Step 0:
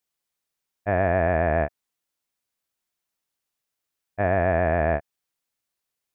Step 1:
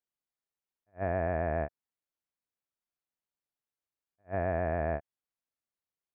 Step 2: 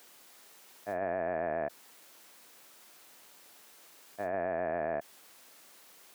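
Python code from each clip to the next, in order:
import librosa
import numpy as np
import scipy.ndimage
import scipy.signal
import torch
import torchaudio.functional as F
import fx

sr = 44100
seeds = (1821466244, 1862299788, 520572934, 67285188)

y1 = fx.high_shelf(x, sr, hz=2500.0, db=-10.0)
y1 = fx.attack_slew(y1, sr, db_per_s=380.0)
y1 = F.gain(torch.from_numpy(y1), -8.5).numpy()
y2 = scipy.signal.sosfilt(scipy.signal.butter(2, 250.0, 'highpass', fs=sr, output='sos'), y1)
y2 = fx.env_flatten(y2, sr, amount_pct=100)
y2 = F.gain(torch.from_numpy(y2), -2.5).numpy()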